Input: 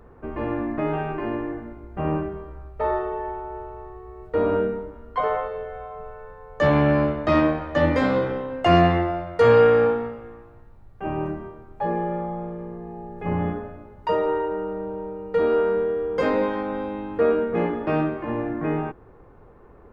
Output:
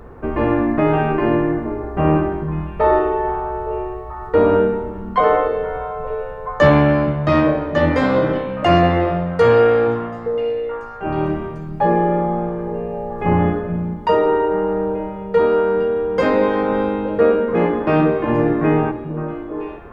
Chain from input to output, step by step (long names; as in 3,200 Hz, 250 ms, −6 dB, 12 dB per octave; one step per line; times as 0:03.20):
speech leveller within 4 dB 0.5 s
echo through a band-pass that steps 433 ms, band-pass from 160 Hz, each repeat 1.4 octaves, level −5 dB
level +6 dB